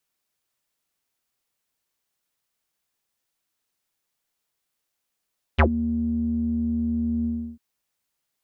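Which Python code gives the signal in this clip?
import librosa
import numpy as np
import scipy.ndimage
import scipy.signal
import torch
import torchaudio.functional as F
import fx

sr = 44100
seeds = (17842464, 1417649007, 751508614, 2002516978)

y = fx.sub_voice(sr, note=39, wave='square', cutoff_hz=240.0, q=9.3, env_oct=4.0, env_s=0.09, attack_ms=18.0, decay_s=0.09, sustain_db=-19, release_s=0.33, note_s=1.67, slope=12)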